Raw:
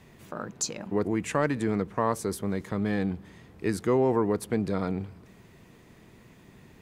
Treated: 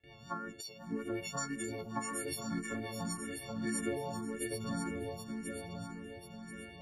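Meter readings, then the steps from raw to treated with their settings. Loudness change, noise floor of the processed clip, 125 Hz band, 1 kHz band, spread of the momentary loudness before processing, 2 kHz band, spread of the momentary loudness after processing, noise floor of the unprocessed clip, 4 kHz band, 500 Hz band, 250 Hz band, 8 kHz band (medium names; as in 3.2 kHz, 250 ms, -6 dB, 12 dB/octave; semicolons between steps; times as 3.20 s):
-11.0 dB, -53 dBFS, -10.5 dB, -9.5 dB, 11 LU, -5.5 dB, 9 LU, -55 dBFS, -2.5 dB, -13.0 dB, -9.5 dB, -4.0 dB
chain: partials quantised in pitch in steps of 4 st; level-controlled noise filter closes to 2.9 kHz, open at -22.5 dBFS; gate with hold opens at -43 dBFS; compression 12:1, threshold -33 dBFS, peak gain reduction 19 dB; AM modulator 110 Hz, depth 20%; rotary cabinet horn 5.5 Hz, later 0.7 Hz, at 2.85 s; on a send: shuffle delay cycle 1038 ms, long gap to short 3:1, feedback 39%, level -4 dB; on the sum: barber-pole phaser +1.8 Hz; trim +3.5 dB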